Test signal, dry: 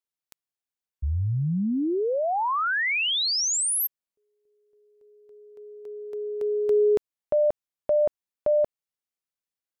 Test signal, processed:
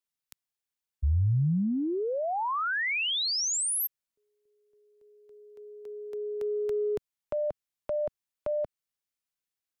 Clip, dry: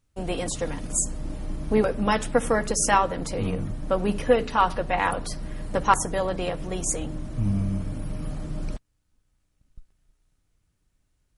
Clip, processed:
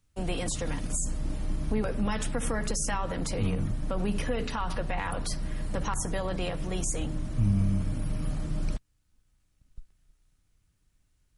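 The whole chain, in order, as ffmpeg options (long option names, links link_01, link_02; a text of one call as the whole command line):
ffmpeg -i in.wav -filter_complex "[0:a]equalizer=frequency=510:width_type=o:width=2.4:gain=-4.5,acrossover=split=160[link_01][link_02];[link_02]acompressor=threshold=-29dB:ratio=5:attack=1.1:release=117:knee=2.83:detection=peak[link_03];[link_01][link_03]amix=inputs=2:normalize=0,volume=1.5dB" out.wav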